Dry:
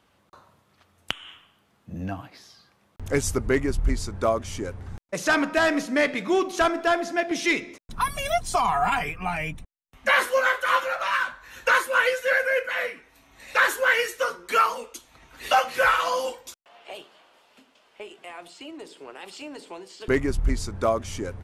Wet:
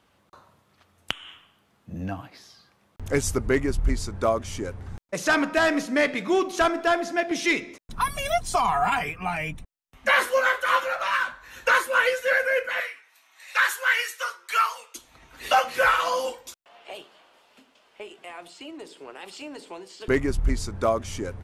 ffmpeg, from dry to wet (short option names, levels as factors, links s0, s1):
-filter_complex "[0:a]asettb=1/sr,asplit=3[s0][s1][s2];[s0]atrim=end=8.834[s3];[s1]atrim=start=8.83:end=9.49,asetpts=PTS-STARTPTS,afade=t=in:d=0.004:c=qsin,afade=t=out:st=0.656:d=0.004:c=qsin,highpass=f=66:p=1[s4];[s2]atrim=start=9.486[s5];[s3][s4]acrossfade=d=0.004:c1=hsin:c2=qsin[s6];[s6][s5]acrossfade=d=0.004:c1=qsin:c2=hsin,asettb=1/sr,asplit=3[s7][s8][s9];[s7]atrim=end=12.804[s10];[s8]atrim=start=12.8:end=14.95,asetpts=PTS-STARTPTS,afade=t=in:d=0.004:c=qsin,afade=t=out:st=2.146:d=0.004:c=qsin,highpass=1100[s11];[s9]atrim=start=14.946[s12];[s10][s11]acrossfade=d=0.004:c1=hsin:c2=qsin[s13];[s13][s12]acrossfade=d=0.004:c1=qsin:c2=hsin"